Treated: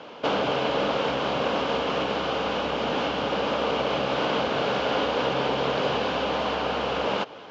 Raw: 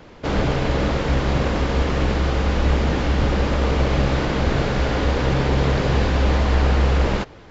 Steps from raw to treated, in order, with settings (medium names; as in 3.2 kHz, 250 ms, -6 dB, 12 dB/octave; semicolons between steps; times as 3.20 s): treble shelf 4.4 kHz -10.5 dB; compression 2:1, threshold -25 dBFS, peak gain reduction 7 dB; cabinet simulation 350–6600 Hz, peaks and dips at 350 Hz -7 dB, 1.9 kHz -9 dB, 3 kHz +7 dB; trim +6.5 dB